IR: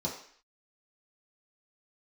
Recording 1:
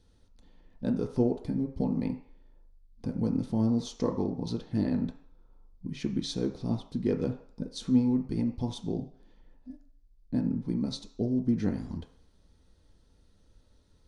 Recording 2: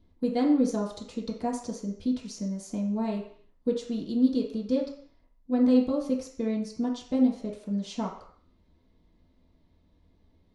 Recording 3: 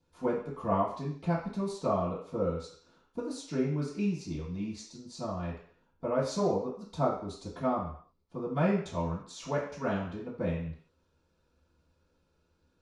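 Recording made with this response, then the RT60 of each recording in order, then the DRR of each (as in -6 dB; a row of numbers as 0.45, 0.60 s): 2; 0.55, 0.55, 0.55 s; 3.0, -5.0, -12.0 dB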